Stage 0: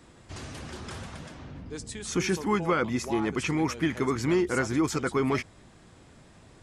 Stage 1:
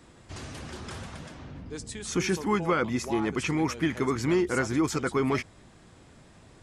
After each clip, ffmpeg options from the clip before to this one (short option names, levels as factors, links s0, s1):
-af anull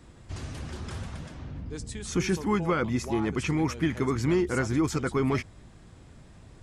-af "lowshelf=f=140:g=11,volume=0.794"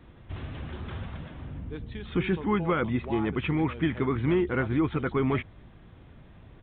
-af "aresample=8000,aresample=44100"